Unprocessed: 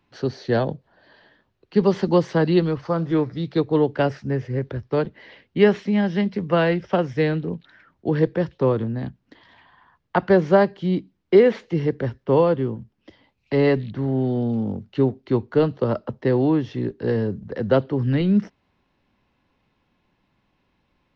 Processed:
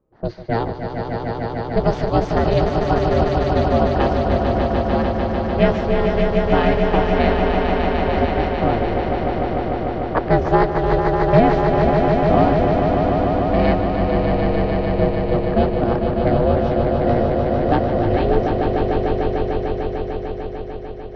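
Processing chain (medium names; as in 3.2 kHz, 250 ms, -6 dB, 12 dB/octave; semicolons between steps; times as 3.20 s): level-controlled noise filter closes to 580 Hz, open at -15.5 dBFS; ring modulator 230 Hz; echo with a slow build-up 149 ms, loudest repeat 5, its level -6 dB; trim +2.5 dB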